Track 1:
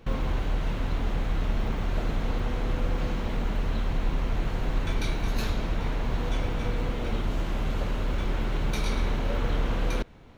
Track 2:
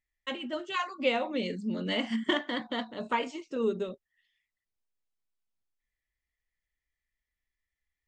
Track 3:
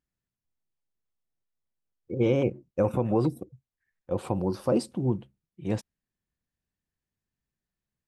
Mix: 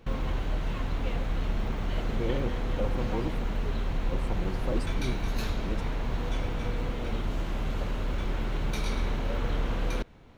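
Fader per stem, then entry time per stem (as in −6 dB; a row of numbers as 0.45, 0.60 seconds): −2.5, −15.0, −9.0 decibels; 0.00, 0.00, 0.00 seconds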